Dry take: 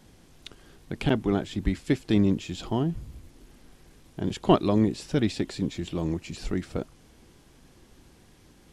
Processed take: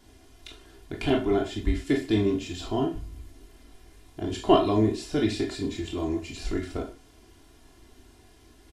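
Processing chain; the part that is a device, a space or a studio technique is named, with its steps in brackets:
microphone above a desk (comb filter 2.9 ms, depth 75%; convolution reverb RT60 0.35 s, pre-delay 16 ms, DRR 0.5 dB)
level −3.5 dB

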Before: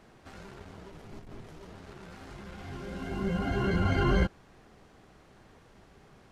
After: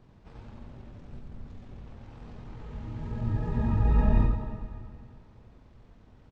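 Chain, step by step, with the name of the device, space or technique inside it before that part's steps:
monster voice (pitch shifter −9 semitones; low-shelf EQ 190 Hz +9 dB; single-tap delay 88 ms −6 dB; convolution reverb RT60 2.3 s, pre-delay 59 ms, DRR 6.5 dB)
level −5 dB

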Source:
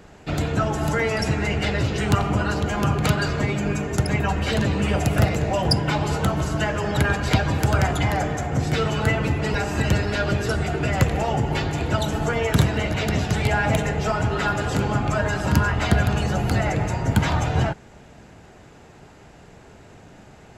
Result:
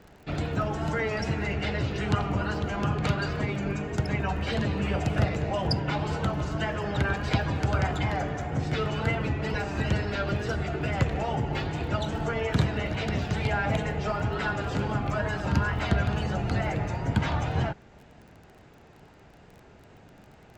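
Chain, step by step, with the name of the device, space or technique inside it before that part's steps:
lo-fi chain (low-pass filter 5,100 Hz 12 dB per octave; tape wow and flutter; surface crackle 22 per second −36 dBFS)
level −6 dB

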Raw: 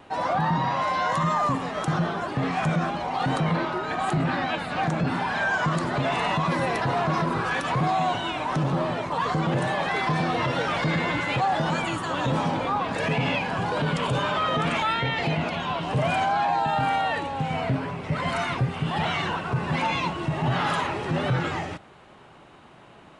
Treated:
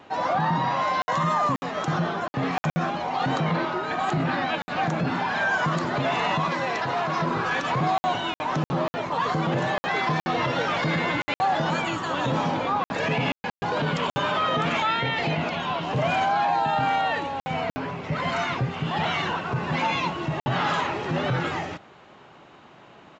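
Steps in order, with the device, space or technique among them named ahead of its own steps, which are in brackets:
call with lost packets (high-pass filter 130 Hz 6 dB per octave; downsampling to 16,000 Hz; dropped packets of 60 ms random)
0:06.48–0:07.21: low-shelf EQ 460 Hz −6.5 dB
level +1 dB

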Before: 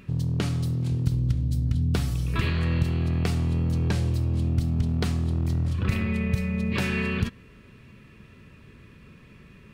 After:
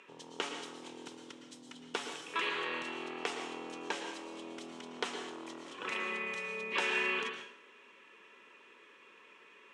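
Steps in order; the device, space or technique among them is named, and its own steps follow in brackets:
phone speaker on a table (loudspeaker in its box 410–8,000 Hz, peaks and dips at 650 Hz −6 dB, 930 Hz +6 dB, 3,100 Hz +4 dB, 4,500 Hz −9 dB)
dense smooth reverb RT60 0.6 s, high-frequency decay 0.95×, pre-delay 100 ms, DRR 6 dB
level −2.5 dB

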